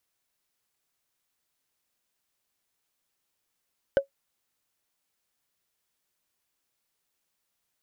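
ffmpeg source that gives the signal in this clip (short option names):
-f lavfi -i "aevalsrc='0.237*pow(10,-3*t/0.11)*sin(2*PI*552*t)+0.075*pow(10,-3*t/0.033)*sin(2*PI*1521.9*t)+0.0237*pow(10,-3*t/0.015)*sin(2*PI*2983*t)+0.0075*pow(10,-3*t/0.008)*sin(2*PI*4931*t)+0.00237*pow(10,-3*t/0.005)*sin(2*PI*7363.7*t)':d=0.45:s=44100"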